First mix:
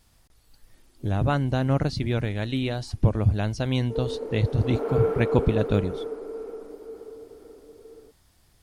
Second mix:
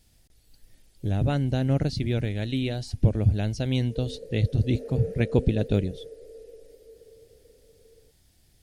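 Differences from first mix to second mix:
background: add vowel filter e; master: add bell 1100 Hz -13.5 dB 0.9 oct

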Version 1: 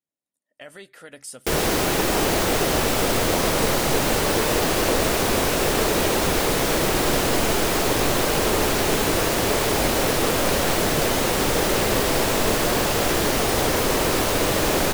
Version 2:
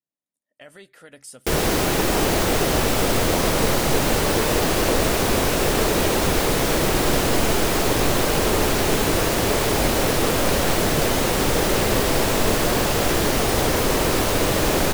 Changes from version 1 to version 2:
speech -3.5 dB; master: add low shelf 210 Hz +4 dB

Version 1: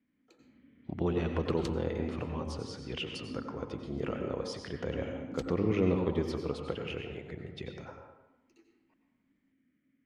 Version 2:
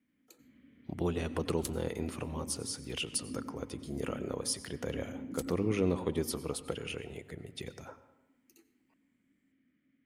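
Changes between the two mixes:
speech: send -11.5 dB; second sound -6.5 dB; master: remove air absorption 180 m

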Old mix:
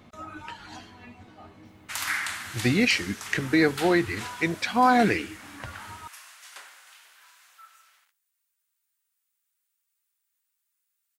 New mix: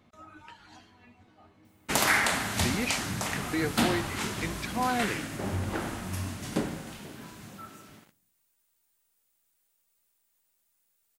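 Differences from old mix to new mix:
speech -9.5 dB; background: remove ladder high-pass 960 Hz, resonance 20%

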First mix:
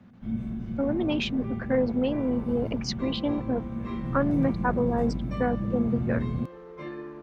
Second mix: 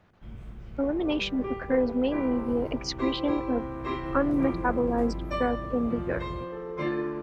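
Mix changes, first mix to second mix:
second sound +8.5 dB; reverb: off

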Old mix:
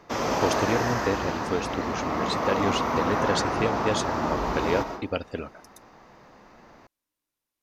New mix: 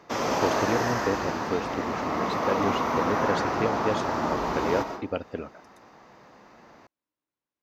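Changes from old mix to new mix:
speech: add LPF 1500 Hz 6 dB/oct; master: add HPF 110 Hz 6 dB/oct

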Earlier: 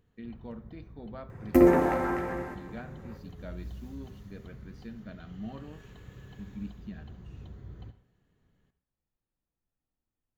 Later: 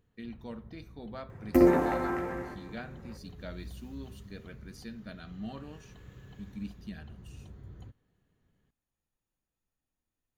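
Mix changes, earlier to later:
speech: remove tape spacing loss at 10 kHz 26 dB; reverb: off

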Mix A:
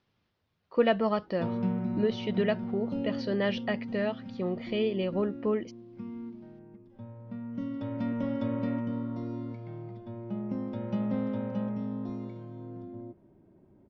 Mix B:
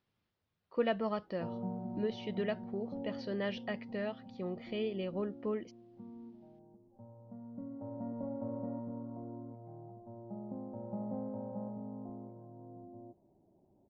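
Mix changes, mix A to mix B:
speech -7.5 dB; background: add ladder low-pass 870 Hz, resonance 60%

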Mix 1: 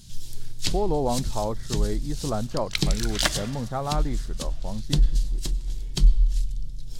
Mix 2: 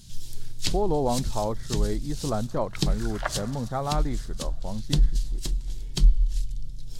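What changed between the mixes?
first sound: send -11.0 dB; second sound: add Butterworth band-pass 920 Hz, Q 0.94

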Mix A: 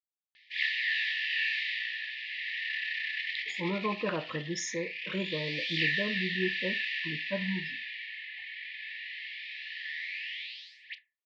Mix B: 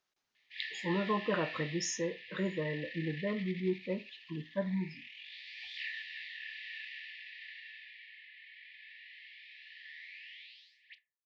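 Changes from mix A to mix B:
speech: entry -2.75 s; background -12.0 dB

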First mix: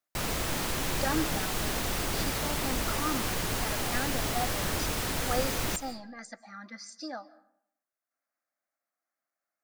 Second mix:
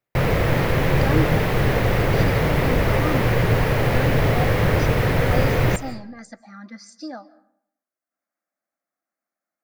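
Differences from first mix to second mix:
background: add ten-band EQ 125 Hz +11 dB, 250 Hz -3 dB, 500 Hz +12 dB, 1000 Hz +3 dB, 2000 Hz +11 dB, 8000 Hz -10 dB; master: add low shelf 420 Hz +11 dB

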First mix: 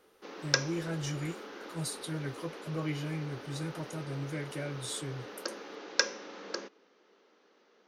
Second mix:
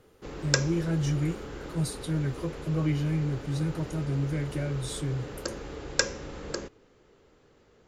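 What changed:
background: remove Chebyshev band-pass 190–6100 Hz, order 5; master: add low shelf 320 Hz +11.5 dB

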